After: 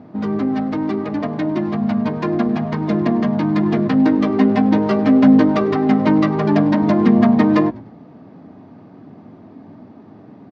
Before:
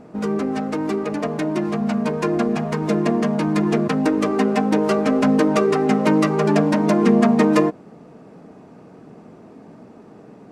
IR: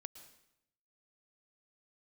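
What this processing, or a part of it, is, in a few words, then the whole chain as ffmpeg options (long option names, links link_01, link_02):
frequency-shifting delay pedal into a guitar cabinet: -filter_complex "[0:a]asettb=1/sr,asplit=3[link_01][link_02][link_03];[link_01]atrim=end=3.744[link_04];[link_02]atrim=start=3.74:end=5.45,asetpts=PTS-STARTPTS,afade=type=in:duration=0.004:curve=qsin,afade=type=out:start_time=1.706:duration=0.004:curve=qsin,asplit=2[link_05][link_06];[link_06]adelay=15,volume=-8.5dB[link_07];[link_05][link_07]amix=inputs=2:normalize=0,atrim=end_sample=75411[link_08];[link_03]atrim=start=5.446[link_09];[link_04][link_08]acrossfade=duration=0.004:curve1=hsin:curve2=qsin[link_10];[link_10][link_09]acrossfade=duration=0.004:curve1=qsin:curve2=hsin,asplit=4[link_11][link_12][link_13][link_14];[link_12]adelay=100,afreqshift=-97,volume=-22dB[link_15];[link_13]adelay=200,afreqshift=-194,volume=-30.6dB[link_16];[link_14]adelay=300,afreqshift=-291,volume=-39.3dB[link_17];[link_11][link_15][link_16][link_17]amix=inputs=4:normalize=0,highpass=77,equalizer=frequency=100:width_type=q:width=4:gain=10,equalizer=frequency=270:width_type=q:width=4:gain=5,equalizer=frequency=460:width_type=q:width=4:gain=-8,equalizer=frequency=1400:width_type=q:width=4:gain=-4,equalizer=frequency=2600:width_type=q:width=4:gain=-6,lowpass=frequency=4300:width=0.5412,lowpass=frequency=4300:width=1.3066,volume=1.5dB"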